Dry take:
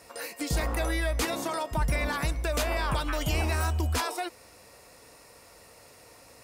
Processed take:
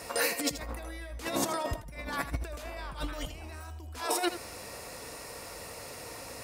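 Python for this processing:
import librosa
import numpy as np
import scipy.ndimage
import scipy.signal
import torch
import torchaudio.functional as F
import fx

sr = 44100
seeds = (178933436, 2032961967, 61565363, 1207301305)

y = fx.over_compress(x, sr, threshold_db=-35.0, ratio=-0.5)
y = y + 10.0 ** (-12.0 / 20.0) * np.pad(y, (int(81 * sr / 1000.0), 0))[:len(y)]
y = y * librosa.db_to_amplitude(1.5)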